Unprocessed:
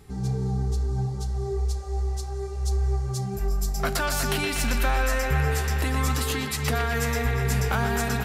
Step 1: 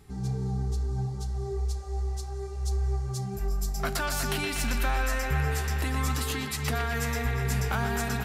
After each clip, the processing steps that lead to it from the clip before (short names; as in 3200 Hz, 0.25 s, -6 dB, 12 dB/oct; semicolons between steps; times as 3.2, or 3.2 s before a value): bell 500 Hz -4 dB 0.38 oct; gain -3.5 dB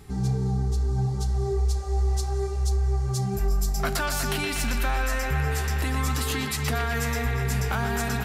in parallel at -2 dB: limiter -25 dBFS, peak gain reduction 9 dB; on the sum: vocal rider 0.5 s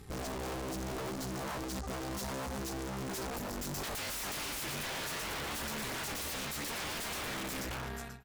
ending faded out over 0.83 s; wrapped overs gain 24.5 dB; tube stage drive 37 dB, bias 0.7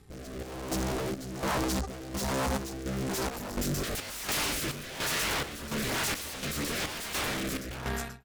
AGC gain up to 12 dB; rotary speaker horn 1.1 Hz; chopper 1.4 Hz, depth 60%, duty 60%; gain -2 dB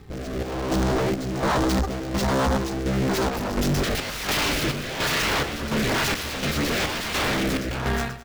median filter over 5 samples; in parallel at -4 dB: wavefolder -31.5 dBFS; on the sum: echo 0.21 s -17.5 dB; gain +6.5 dB